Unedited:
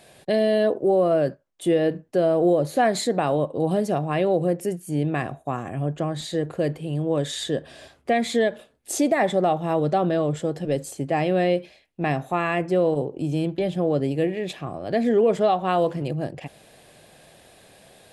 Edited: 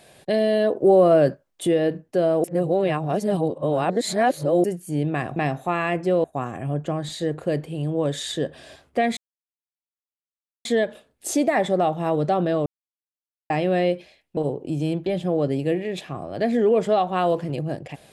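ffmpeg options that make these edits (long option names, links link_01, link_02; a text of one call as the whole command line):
ffmpeg -i in.wav -filter_complex "[0:a]asplit=11[link_01][link_02][link_03][link_04][link_05][link_06][link_07][link_08][link_09][link_10][link_11];[link_01]atrim=end=0.812[link_12];[link_02]atrim=start=0.808:end=1.672,asetpts=PTS-STARTPTS,volume=4.5dB[link_13];[link_03]atrim=start=1.668:end=2.442[link_14];[link_04]atrim=start=2.438:end=4.642,asetpts=PTS-STARTPTS,areverse[link_15];[link_05]atrim=start=4.638:end=5.362[link_16];[link_06]atrim=start=12.008:end=12.892[link_17];[link_07]atrim=start=5.358:end=8.29,asetpts=PTS-STARTPTS,afade=type=out:start_time=2.928:duration=0.004:curve=hsin,apad=pad_dur=1.48[link_18];[link_08]atrim=start=8.29:end=10.3,asetpts=PTS-STARTPTS,afade=type=in:duration=0.004:curve=hsin,afade=type=out:start_time=2.006:duration=0.004:curve=hsin[link_19];[link_09]atrim=start=10.3:end=11.14,asetpts=PTS-STARTPTS,volume=0[link_20];[link_10]atrim=start=11.14:end=12.012,asetpts=PTS-STARTPTS,afade=type=in:duration=0.004:curve=hsin[link_21];[link_11]atrim=start=12.888[link_22];[link_12][link_13]acrossfade=duration=0.004:curve1=hsin:curve2=hsin[link_23];[link_23][link_14]acrossfade=duration=0.004:curve1=hsin:curve2=hsin[link_24];[link_24][link_15]acrossfade=duration=0.004:curve1=hsin:curve2=hsin[link_25];[link_25][link_16]acrossfade=duration=0.004:curve1=hsin:curve2=hsin[link_26];[link_26][link_17]acrossfade=duration=0.004:curve1=hsin:curve2=hsin[link_27];[link_18][link_19][link_20][link_21]concat=n=4:v=0:a=1[link_28];[link_27][link_28]acrossfade=duration=0.004:curve1=hsin:curve2=hsin[link_29];[link_29][link_22]acrossfade=duration=0.004:curve1=hsin:curve2=hsin" out.wav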